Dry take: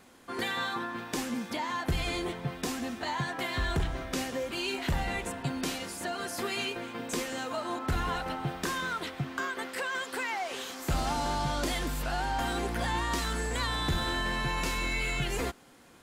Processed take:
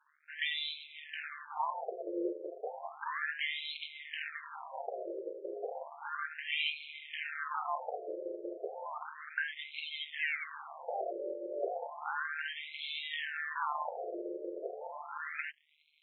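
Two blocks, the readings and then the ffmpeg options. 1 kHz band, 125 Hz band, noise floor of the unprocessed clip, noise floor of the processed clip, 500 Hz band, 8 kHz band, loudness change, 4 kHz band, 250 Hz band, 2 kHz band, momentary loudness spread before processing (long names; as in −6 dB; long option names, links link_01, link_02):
−6.5 dB, below −40 dB, −45 dBFS, −55 dBFS, −3.5 dB, below −40 dB, −6.0 dB, −5.5 dB, −13.0 dB, −4.0 dB, 5 LU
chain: -af "tremolo=f=150:d=0.788,aeval=exprs='sgn(val(0))*max(abs(val(0))-0.00126,0)':channel_layout=same,afftfilt=real='re*between(b*sr/1024,430*pow(3000/430,0.5+0.5*sin(2*PI*0.33*pts/sr))/1.41,430*pow(3000/430,0.5+0.5*sin(2*PI*0.33*pts/sr))*1.41)':imag='im*between(b*sr/1024,430*pow(3000/430,0.5+0.5*sin(2*PI*0.33*pts/sr))/1.41,430*pow(3000/430,0.5+0.5*sin(2*PI*0.33*pts/sr))*1.41)':win_size=1024:overlap=0.75,volume=6dB"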